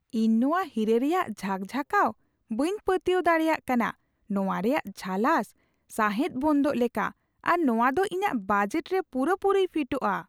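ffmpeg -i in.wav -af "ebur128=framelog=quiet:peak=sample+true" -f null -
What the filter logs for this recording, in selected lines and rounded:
Integrated loudness:
  I:         -26.5 LUFS
  Threshold: -36.7 LUFS
Loudness range:
  LRA:         1.4 LU
  Threshold: -46.9 LUFS
  LRA low:   -27.5 LUFS
  LRA high:  -26.2 LUFS
Sample peak:
  Peak:       -9.6 dBFS
True peak:
  Peak:       -9.6 dBFS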